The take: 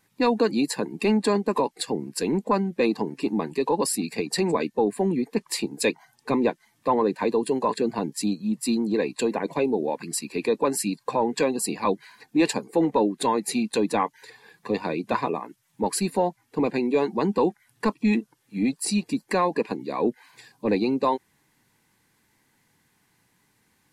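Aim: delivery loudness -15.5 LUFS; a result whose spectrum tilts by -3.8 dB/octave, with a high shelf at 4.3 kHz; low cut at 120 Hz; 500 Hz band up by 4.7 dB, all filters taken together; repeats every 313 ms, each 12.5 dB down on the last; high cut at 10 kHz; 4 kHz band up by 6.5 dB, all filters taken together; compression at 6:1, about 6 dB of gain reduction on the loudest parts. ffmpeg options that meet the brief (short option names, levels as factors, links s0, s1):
-af "highpass=120,lowpass=10000,equalizer=f=500:t=o:g=5.5,equalizer=f=4000:t=o:g=5.5,highshelf=f=4300:g=3.5,acompressor=threshold=0.112:ratio=6,aecho=1:1:313|626|939:0.237|0.0569|0.0137,volume=3.16"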